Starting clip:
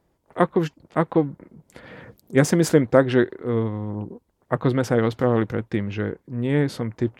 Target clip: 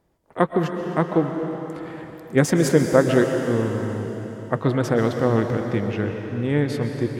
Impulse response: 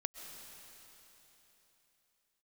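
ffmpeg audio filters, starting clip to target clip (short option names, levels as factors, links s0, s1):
-filter_complex "[1:a]atrim=start_sample=2205[s0];[0:a][s0]afir=irnorm=-1:irlink=0,volume=1.19"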